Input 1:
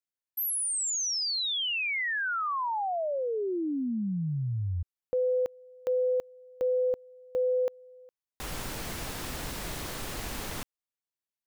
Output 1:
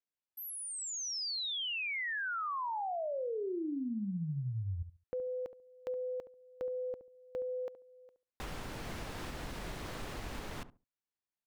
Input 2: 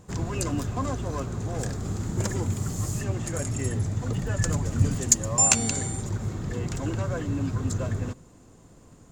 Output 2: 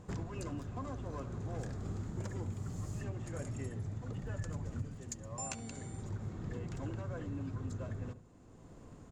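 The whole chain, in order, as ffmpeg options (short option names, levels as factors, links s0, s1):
-filter_complex "[0:a]lowpass=f=2900:p=1,acompressor=threshold=0.0224:ratio=6:attack=2.8:release=973:knee=1:detection=rms,asplit=2[s0][s1];[s1]adelay=70,lowpass=f=800:p=1,volume=0.282,asplit=2[s2][s3];[s3]adelay=70,lowpass=f=800:p=1,volume=0.21,asplit=2[s4][s5];[s5]adelay=70,lowpass=f=800:p=1,volume=0.21[s6];[s2][s4][s6]amix=inputs=3:normalize=0[s7];[s0][s7]amix=inputs=2:normalize=0,volume=0.841"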